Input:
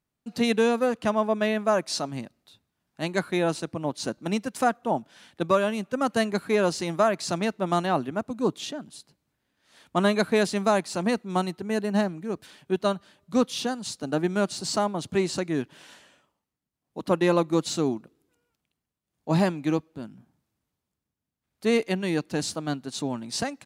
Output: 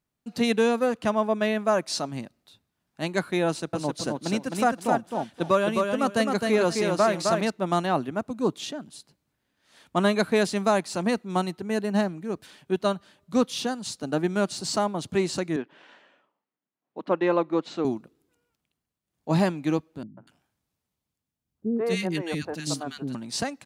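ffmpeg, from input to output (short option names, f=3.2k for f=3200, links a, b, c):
-filter_complex "[0:a]asettb=1/sr,asplit=3[a][b][c];[a]atrim=end=3.474[d];[b]atrim=start=3.47:end=7.5,asetpts=PTS-STARTPTS,afade=t=in:d=0.004:c=qsin,afade=t=out:st=4.026:d=0.004:c=qsin,aecho=1:1:261|522|783:0.631|0.126|0.0252,atrim=end_sample=177723[e];[c]atrim=start=7.496[f];[d][e]acrossfade=d=0.004:c1=hsin:c2=qsin[g];[g][f]acrossfade=d=0.004:c1=qsin:c2=hsin,asettb=1/sr,asplit=3[h][i][j];[h]atrim=end=15.564[k];[i]atrim=start=15.56:end=17.85,asetpts=PTS-STARTPTS,afade=t=in:d=0.004:c=qsin,afade=t=out:st=2.286:d=0.004:c=qsin,highpass=270,lowpass=2.5k[l];[j]atrim=start=17.846[m];[k][l]acrossfade=d=0.004:c1=hsin:c2=qsin[n];[n][m]acrossfade=d=0.004:c1=qsin:c2=hsin,asettb=1/sr,asplit=3[o][p][q];[o]atrim=end=20.034[r];[p]atrim=start=20.03:end=23.15,asetpts=PTS-STARTPTS,afade=t=in:d=0.004:c=qsin,afade=t=out:st=3.116:d=0.004:c=qsin,acrossover=split=370|1500[s][t][u];[t]adelay=140[v];[u]adelay=240[w];[s][v][w]amix=inputs=3:normalize=0,atrim=end_sample=137592[x];[q]atrim=start=23.146[y];[r][x]acrossfade=d=0.004:c1=hsin:c2=qsin[z];[z][y]acrossfade=d=0.004:c1=qsin:c2=hsin"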